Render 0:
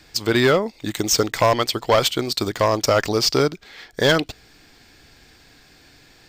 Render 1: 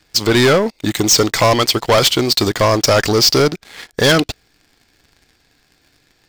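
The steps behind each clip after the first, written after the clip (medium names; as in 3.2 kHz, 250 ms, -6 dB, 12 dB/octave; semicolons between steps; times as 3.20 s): dynamic bell 5.3 kHz, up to +5 dB, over -33 dBFS, Q 1.2; waveshaping leveller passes 3; trim -2 dB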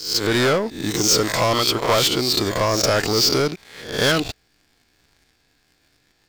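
reverse spectral sustain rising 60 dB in 0.55 s; trim -7.5 dB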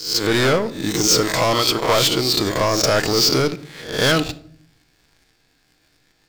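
simulated room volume 910 m³, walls furnished, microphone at 0.58 m; trim +1 dB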